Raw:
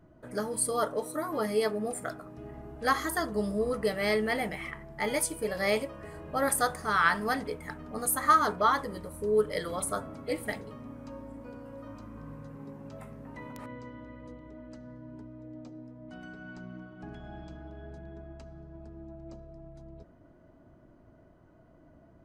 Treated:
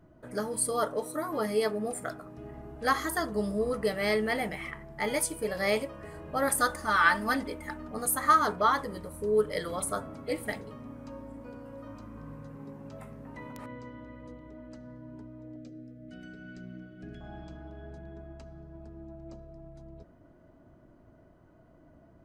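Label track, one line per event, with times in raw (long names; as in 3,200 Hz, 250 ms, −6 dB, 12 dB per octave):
6.590000	7.880000	comb filter 3.4 ms
15.560000	17.210000	Butterworth band-reject 950 Hz, Q 1.1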